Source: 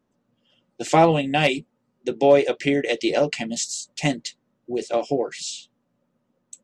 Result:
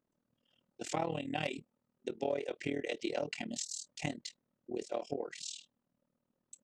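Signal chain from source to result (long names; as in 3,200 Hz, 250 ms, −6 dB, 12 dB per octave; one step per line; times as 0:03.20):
downward compressor 3 to 1, threshold −22 dBFS, peak gain reduction 9.5 dB
amplitude modulation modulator 39 Hz, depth 80%
level −8 dB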